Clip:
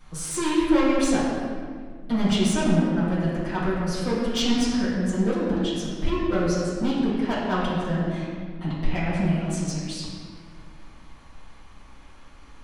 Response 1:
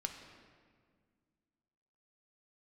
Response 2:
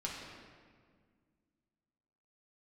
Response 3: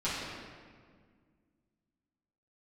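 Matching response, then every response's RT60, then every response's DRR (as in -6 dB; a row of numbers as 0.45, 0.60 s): 3; 1.8, 1.8, 1.8 s; 4.0, -4.0, -12.0 dB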